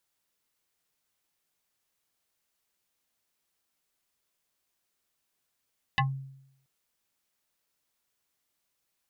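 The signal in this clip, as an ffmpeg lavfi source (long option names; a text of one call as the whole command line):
ffmpeg -f lavfi -i "aevalsrc='0.1*pow(10,-3*t/0.77)*sin(2*PI*135*t+3.8*pow(10,-3*t/0.15)*sin(2*PI*6.93*135*t))':duration=0.68:sample_rate=44100" out.wav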